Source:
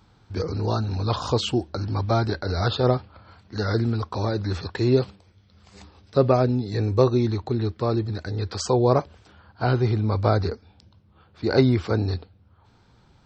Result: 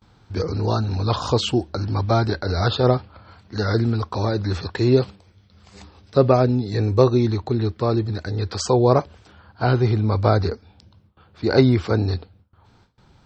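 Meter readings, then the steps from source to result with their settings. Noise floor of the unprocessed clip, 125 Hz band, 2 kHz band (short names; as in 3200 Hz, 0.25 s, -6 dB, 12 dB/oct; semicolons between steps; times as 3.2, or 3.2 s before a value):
-58 dBFS, +3.0 dB, +3.0 dB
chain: gate with hold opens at -48 dBFS; gain +3 dB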